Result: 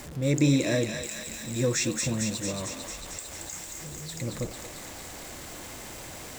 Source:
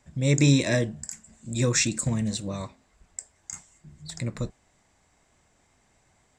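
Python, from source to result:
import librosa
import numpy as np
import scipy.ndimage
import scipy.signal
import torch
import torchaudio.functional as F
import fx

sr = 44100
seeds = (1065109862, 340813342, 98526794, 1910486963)

p1 = x + 0.5 * 10.0 ** (-32.0 / 20.0) * np.sign(x)
p2 = fx.small_body(p1, sr, hz=(320.0, 510.0), ring_ms=30, db=7)
p3 = p2 + fx.echo_thinned(p2, sr, ms=225, feedback_pct=78, hz=1100.0, wet_db=-4.0, dry=0)
y = p3 * librosa.db_to_amplitude(-6.0)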